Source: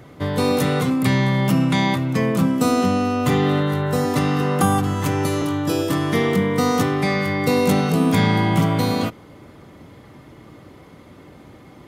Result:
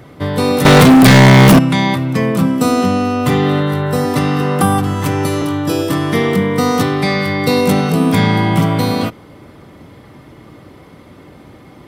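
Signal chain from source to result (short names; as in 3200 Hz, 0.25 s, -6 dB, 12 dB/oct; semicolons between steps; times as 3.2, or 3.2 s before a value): notch 6700 Hz, Q 10; 0.65–1.59 sample leveller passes 5; 6.8–7.61 bell 4100 Hz +5.5 dB 0.54 oct; gain +4.5 dB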